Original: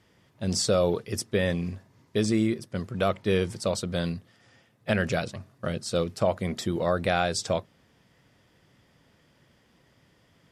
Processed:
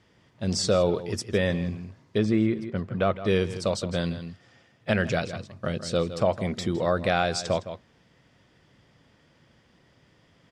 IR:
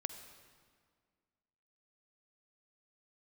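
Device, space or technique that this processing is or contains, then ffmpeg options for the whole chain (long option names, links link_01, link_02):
ducked delay: -filter_complex "[0:a]lowpass=7100,asettb=1/sr,asplit=3[link_01][link_02][link_03];[link_01]atrim=end=2.184[link_04];[link_02]atrim=start=2.18:end=3.25,asetpts=PTS-STARTPTS,afade=type=in:duration=0.004:curve=qsin,afade=type=out:start_time=1.066:duration=0.004:curve=qsin,bass=frequency=250:gain=1,treble=frequency=4000:gain=-14[link_05];[link_03]atrim=start=3.246[link_06];[link_04][link_05]acrossfade=duration=0.004:curve1=hsin:curve2=qsin[link_07];[link_07][link_06]acrossfade=duration=0.004:curve1=qsin:curve2=hsin,asplit=3[link_08][link_09][link_10];[link_09]adelay=161,volume=-7dB[link_11];[link_10]apad=whole_len=470883[link_12];[link_11][link_12]sidechaincompress=threshold=-34dB:ratio=4:attack=16:release=230[link_13];[link_08][link_13]amix=inputs=2:normalize=0,volume=1dB"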